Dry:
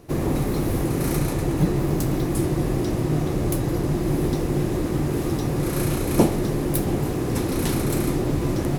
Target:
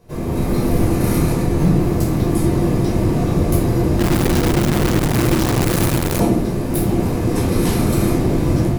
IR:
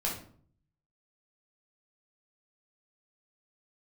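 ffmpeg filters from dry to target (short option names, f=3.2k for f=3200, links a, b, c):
-filter_complex "[0:a]dynaudnorm=f=260:g=3:m=7dB[a];[1:a]atrim=start_sample=2205[b];[a][b]afir=irnorm=-1:irlink=0,asettb=1/sr,asplit=3[c][d][e];[c]atrim=end=3.994[f];[d]atrim=start=3.99:end=6.2,asetpts=PTS-STARTPTS,afade=t=in:d=0.004:c=qsin,afade=t=out:st=2.206:d=0.004:c=qsin,acrusher=bits=3:dc=4:mix=0:aa=0.000001[g];[e]atrim=start=6.196[h];[f][g]acrossfade=d=0.004:c1=hsin:c2=qsin[i];[i][h]acrossfade=d=0.004:c1=qsin:c2=hsin,volume=-6.5dB"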